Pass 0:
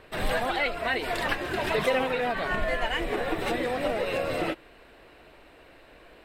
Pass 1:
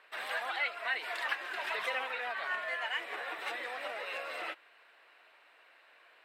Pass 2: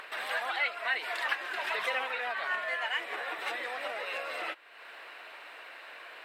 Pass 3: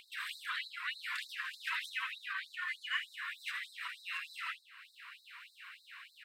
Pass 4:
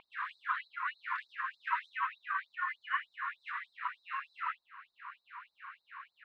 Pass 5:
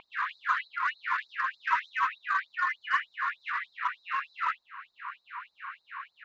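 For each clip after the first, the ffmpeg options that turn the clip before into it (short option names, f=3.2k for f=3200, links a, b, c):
-af "highpass=1.3k,highshelf=f=3.1k:g=-12"
-af "acompressor=mode=upward:threshold=-39dB:ratio=2.5,volume=3dB"
-af "aecho=1:1:78|156|234|312|390:0.335|0.147|0.0648|0.0285|0.0126,afftfilt=real='re*gte(b*sr/1024,930*pow(3800/930,0.5+0.5*sin(2*PI*3.3*pts/sr)))':imag='im*gte(b*sr/1024,930*pow(3800/930,0.5+0.5*sin(2*PI*3.3*pts/sr)))':win_size=1024:overlap=0.75,volume=-3dB"
-af "lowpass=f=980:t=q:w=2.1,volume=8dB"
-filter_complex "[0:a]asplit=2[a][b];[b]volume=35dB,asoftclip=hard,volume=-35dB,volume=-8.5dB[c];[a][c]amix=inputs=2:normalize=0,aresample=16000,aresample=44100,volume=5dB"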